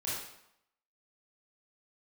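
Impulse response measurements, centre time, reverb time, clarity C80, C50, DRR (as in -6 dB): 68 ms, 0.75 s, 3.5 dB, -0.5 dB, -8.5 dB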